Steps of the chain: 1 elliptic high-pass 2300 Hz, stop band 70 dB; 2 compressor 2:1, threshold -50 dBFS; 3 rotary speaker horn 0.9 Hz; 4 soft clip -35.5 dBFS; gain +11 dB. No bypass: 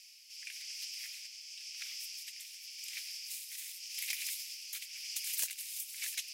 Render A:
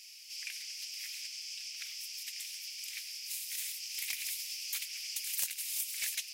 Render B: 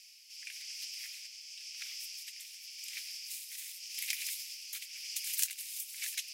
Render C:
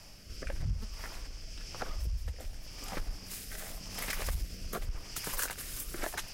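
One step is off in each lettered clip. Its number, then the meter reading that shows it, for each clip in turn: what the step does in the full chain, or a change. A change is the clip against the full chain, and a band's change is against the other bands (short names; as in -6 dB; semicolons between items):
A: 3, crest factor change -2.5 dB; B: 4, distortion -15 dB; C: 1, crest factor change -5.5 dB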